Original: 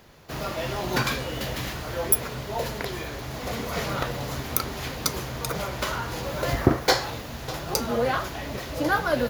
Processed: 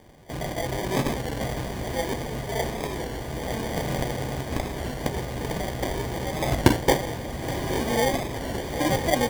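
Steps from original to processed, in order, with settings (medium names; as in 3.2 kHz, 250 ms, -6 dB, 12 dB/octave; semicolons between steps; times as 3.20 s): low-pass 7.5 kHz 12 dB/octave; peaking EQ 1.6 kHz -14.5 dB 0.32 oct; sample-and-hold 33×; on a send: echo that smears into a reverb 979 ms, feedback 64%, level -10 dB; on the sum: warped record 33 1/3 rpm, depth 100 cents; trim +1.5 dB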